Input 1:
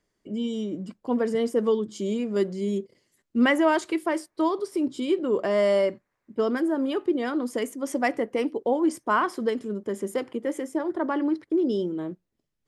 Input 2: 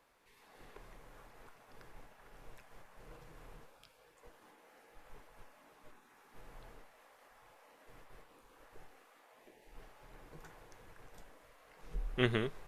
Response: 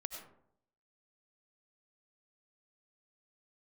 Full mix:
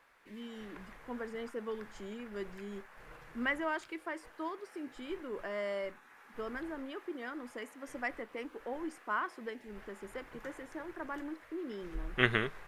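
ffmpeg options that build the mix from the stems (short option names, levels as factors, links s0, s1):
-filter_complex "[0:a]acrusher=bits=10:mix=0:aa=0.000001,volume=0.126[s0];[1:a]volume=0.891[s1];[s0][s1]amix=inputs=2:normalize=0,equalizer=f=1700:w=0.89:g=10.5"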